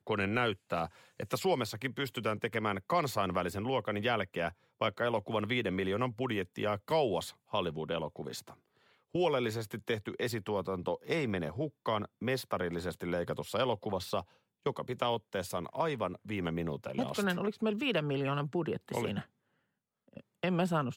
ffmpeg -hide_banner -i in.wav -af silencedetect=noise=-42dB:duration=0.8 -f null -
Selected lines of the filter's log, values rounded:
silence_start: 19.23
silence_end: 20.17 | silence_duration: 0.94